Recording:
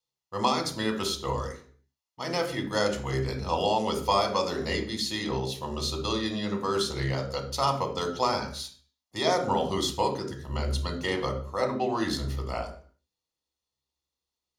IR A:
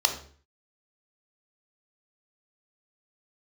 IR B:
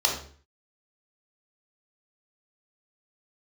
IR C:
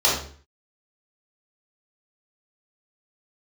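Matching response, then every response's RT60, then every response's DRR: A; 0.45, 0.45, 0.45 seconds; 4.5, −1.0, −7.0 decibels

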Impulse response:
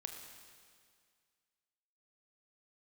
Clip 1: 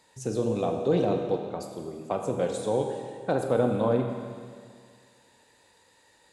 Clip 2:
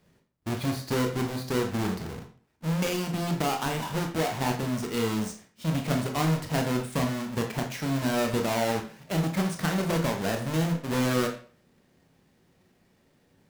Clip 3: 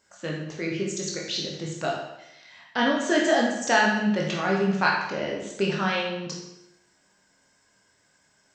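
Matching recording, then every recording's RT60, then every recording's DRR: 1; 2.0, 0.45, 0.90 seconds; 3.5, 2.5, −2.5 decibels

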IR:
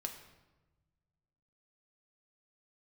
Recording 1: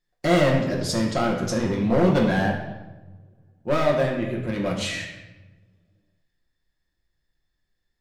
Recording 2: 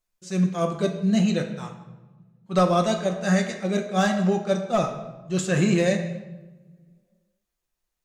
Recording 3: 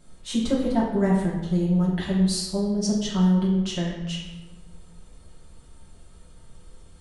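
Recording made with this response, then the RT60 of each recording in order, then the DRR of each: 2; 1.1, 1.1, 1.1 seconds; −2.0, 3.5, −7.0 decibels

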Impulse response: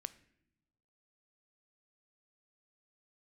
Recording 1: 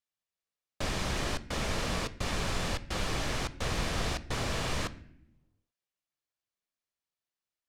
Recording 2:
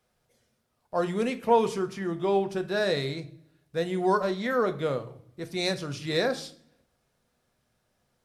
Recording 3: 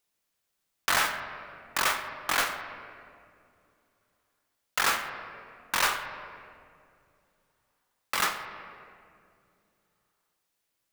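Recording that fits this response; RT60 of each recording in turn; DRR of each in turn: 1; non-exponential decay, 0.55 s, 2.5 s; 13.5, 7.5, 5.0 decibels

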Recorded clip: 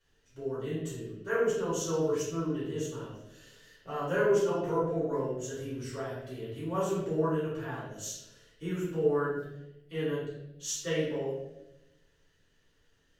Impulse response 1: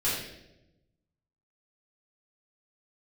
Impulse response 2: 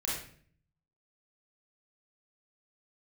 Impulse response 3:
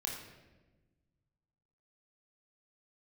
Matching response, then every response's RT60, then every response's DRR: 1; 0.90, 0.50, 1.2 seconds; −10.5, −6.0, −1.5 decibels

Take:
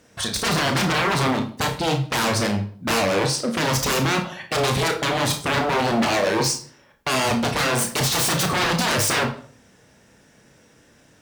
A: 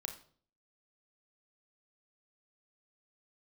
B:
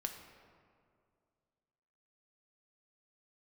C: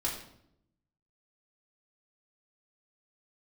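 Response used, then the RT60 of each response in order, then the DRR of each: A; 0.50, 2.3, 0.75 seconds; 4.0, 4.0, −5.5 decibels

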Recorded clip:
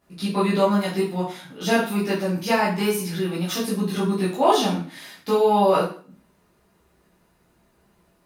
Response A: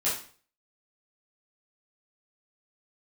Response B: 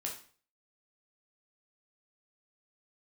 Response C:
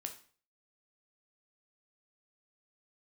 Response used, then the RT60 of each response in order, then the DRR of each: A; 0.45, 0.45, 0.45 seconds; −9.5, −1.5, 4.5 decibels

